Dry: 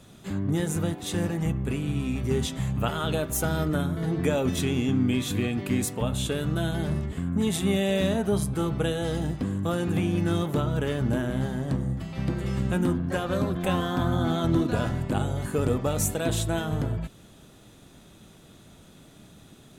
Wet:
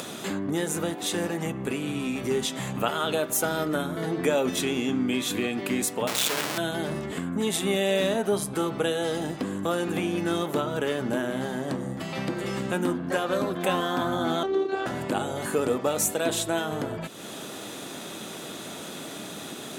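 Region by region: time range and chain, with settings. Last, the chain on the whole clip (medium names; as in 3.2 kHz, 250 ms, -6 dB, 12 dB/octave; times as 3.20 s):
6.07–6.58 s: Schmitt trigger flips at -39.5 dBFS + tilt shelf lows -4.5 dB, about 1.1 kHz
14.43–14.86 s: distance through air 130 m + robot voice 386 Hz
whole clip: high-pass 300 Hz 12 dB/octave; upward compressor, threshold -27 dBFS; trim +3 dB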